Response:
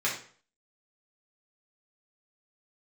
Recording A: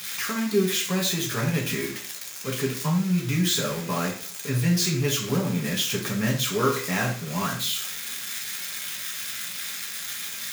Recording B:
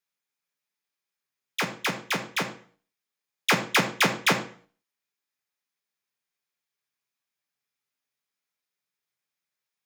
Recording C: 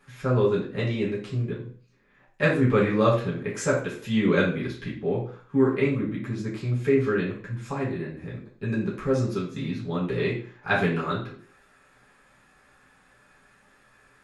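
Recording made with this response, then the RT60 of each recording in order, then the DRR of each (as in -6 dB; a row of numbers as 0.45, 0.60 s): C; 0.45, 0.45, 0.45 s; -2.5, 3.5, -7.0 dB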